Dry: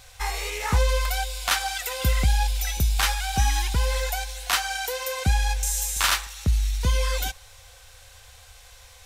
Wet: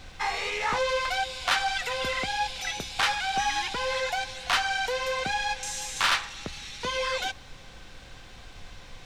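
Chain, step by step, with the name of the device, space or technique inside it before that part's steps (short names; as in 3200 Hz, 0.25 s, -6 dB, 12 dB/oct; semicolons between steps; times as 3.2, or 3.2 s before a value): aircraft cabin announcement (BPF 380–4200 Hz; soft clip -20 dBFS, distortion -15 dB; brown noise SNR 15 dB); gain +3 dB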